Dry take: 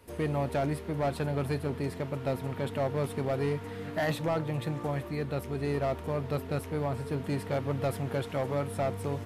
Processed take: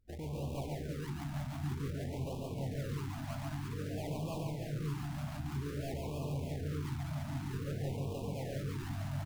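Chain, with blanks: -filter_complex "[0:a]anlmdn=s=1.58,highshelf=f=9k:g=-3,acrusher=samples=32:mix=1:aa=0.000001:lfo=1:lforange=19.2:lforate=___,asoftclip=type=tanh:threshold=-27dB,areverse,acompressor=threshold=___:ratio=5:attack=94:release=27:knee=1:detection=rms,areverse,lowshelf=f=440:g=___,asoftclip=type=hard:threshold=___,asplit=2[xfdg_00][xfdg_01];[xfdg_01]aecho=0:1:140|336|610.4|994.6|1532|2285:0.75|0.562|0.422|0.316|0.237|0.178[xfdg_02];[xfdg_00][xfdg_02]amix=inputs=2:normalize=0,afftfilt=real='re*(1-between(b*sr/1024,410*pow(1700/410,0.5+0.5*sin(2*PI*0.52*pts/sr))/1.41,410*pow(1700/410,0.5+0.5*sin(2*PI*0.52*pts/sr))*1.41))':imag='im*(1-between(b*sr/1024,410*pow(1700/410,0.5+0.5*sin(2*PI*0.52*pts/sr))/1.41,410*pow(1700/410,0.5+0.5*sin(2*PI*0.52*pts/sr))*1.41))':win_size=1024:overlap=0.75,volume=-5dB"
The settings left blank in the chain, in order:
3.2, -41dB, 7.5, -34.5dB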